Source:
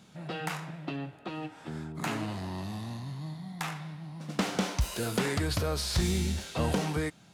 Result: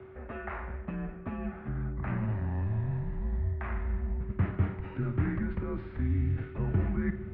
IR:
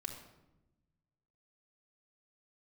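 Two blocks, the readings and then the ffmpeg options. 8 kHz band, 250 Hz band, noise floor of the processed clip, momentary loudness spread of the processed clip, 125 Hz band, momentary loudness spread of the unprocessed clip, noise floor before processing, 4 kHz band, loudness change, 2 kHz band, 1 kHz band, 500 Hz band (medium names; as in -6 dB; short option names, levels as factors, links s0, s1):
under -40 dB, -0.5 dB, -44 dBFS, 8 LU, +3.5 dB, 11 LU, -55 dBFS, under -25 dB, 0.0 dB, -5.5 dB, -6.0 dB, -5.0 dB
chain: -filter_complex "[0:a]areverse,acompressor=threshold=0.00708:ratio=4,areverse,aeval=exprs='val(0)+0.00251*sin(2*PI*480*n/s)':c=same,aemphasis=mode=production:type=75kf,asplit=2[s0][s1];[1:a]atrim=start_sample=2205,adelay=53[s2];[s1][s2]afir=irnorm=-1:irlink=0,volume=0.355[s3];[s0][s3]amix=inputs=2:normalize=0,highpass=f=190:t=q:w=0.5412,highpass=f=190:t=q:w=1.307,lowpass=f=2100:t=q:w=0.5176,lowpass=f=2100:t=q:w=0.7071,lowpass=f=2100:t=q:w=1.932,afreqshift=-100,asubboost=boost=7.5:cutoff=210,volume=2"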